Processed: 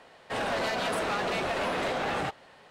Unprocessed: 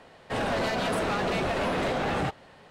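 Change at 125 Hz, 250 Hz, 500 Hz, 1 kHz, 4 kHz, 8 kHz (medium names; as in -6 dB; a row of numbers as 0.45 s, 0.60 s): -7.5 dB, -5.5 dB, -2.5 dB, -1.0 dB, 0.0 dB, 0.0 dB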